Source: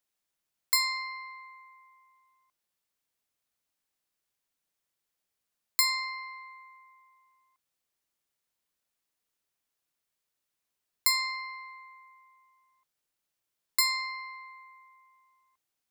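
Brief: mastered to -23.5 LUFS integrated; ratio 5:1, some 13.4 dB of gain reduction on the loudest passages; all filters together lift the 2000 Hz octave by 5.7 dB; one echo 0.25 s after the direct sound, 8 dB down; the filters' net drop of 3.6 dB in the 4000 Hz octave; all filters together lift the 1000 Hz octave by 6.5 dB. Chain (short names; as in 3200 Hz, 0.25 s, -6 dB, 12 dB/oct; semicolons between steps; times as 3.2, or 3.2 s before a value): bell 1000 Hz +5.5 dB; bell 2000 Hz +6 dB; bell 4000 Hz -5 dB; compressor 5:1, threshold -35 dBFS; echo 0.25 s -8 dB; gain +15 dB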